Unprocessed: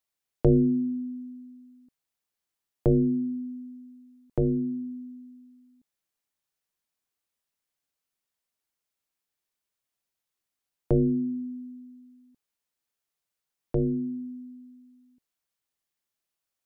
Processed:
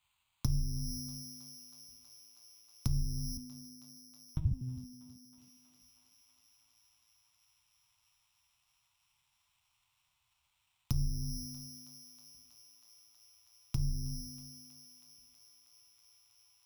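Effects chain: band shelf 620 Hz -13.5 dB; reverb RT60 0.45 s, pre-delay 6 ms, DRR -1.5 dB; careless resampling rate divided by 8×, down none, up hold; 3.37–5.38 LPC vocoder at 8 kHz pitch kept; EQ curve 100 Hz 0 dB, 260 Hz -24 dB, 500 Hz -27 dB, 980 Hz -3 dB, 1700 Hz -16 dB, 2600 Hz -1 dB; thinning echo 0.32 s, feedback 84%, high-pass 340 Hz, level -20.5 dB; compressor 5:1, threshold -32 dBFS, peak gain reduction 18 dB; HPF 67 Hz 6 dB/oct; notch 460 Hz, Q 14; gain +9 dB

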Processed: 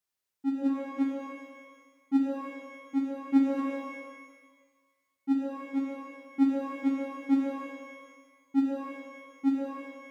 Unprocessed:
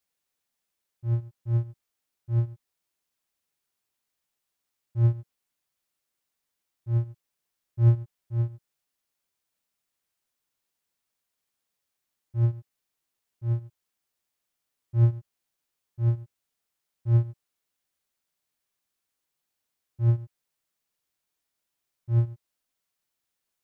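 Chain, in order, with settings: speed mistake 33 rpm record played at 78 rpm; shimmer reverb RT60 1.4 s, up +12 st, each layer -8 dB, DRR 0.5 dB; gain -2.5 dB

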